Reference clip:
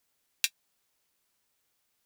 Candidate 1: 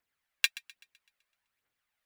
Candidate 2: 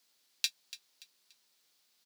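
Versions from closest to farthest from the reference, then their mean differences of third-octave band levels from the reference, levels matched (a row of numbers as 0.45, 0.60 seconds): 2, 1; 2.5, 4.0 decibels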